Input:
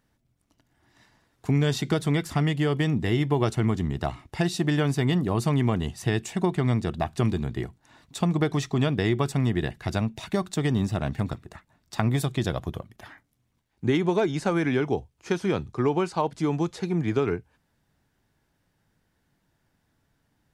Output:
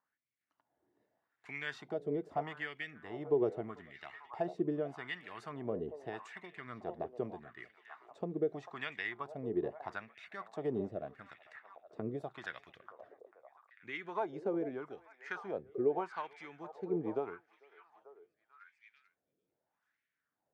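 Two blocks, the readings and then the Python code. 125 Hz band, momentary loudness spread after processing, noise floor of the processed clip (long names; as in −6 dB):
−25.0 dB, 18 LU, below −85 dBFS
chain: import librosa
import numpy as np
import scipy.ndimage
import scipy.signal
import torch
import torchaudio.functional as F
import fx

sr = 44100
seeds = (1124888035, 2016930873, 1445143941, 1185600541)

y = fx.echo_stepped(x, sr, ms=444, hz=620.0, octaves=0.7, feedback_pct=70, wet_db=-8.5)
y = fx.rotary(y, sr, hz=1.1)
y = fx.wah_lfo(y, sr, hz=0.81, low_hz=420.0, high_hz=2200.0, q=3.4)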